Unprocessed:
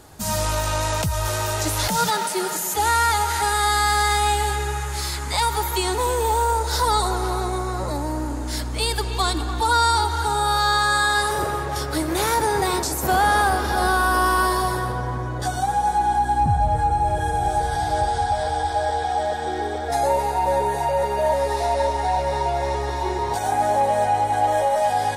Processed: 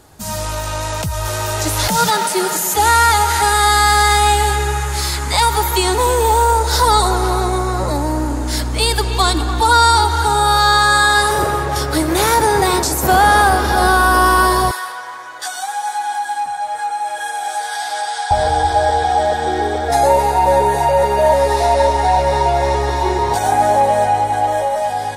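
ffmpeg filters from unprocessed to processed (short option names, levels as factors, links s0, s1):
-filter_complex "[0:a]asettb=1/sr,asplit=3[s0][s1][s2];[s0]atrim=end=14.714[s3];[s1]atrim=start=14.71:end=18.31,asetpts=PTS-STARTPTS,afade=t=in:d=0.004:c=qsin,afade=t=out:st=3.596:d=0.004:c=qsin,highpass=1300[s4];[s2]atrim=start=18.306[s5];[s3][s4]acrossfade=d=0.004:c1=hsin:c2=qsin[s6];[s6][s5]acrossfade=d=0.004:c1=qsin:c2=hsin,dynaudnorm=f=470:g=7:m=3.16"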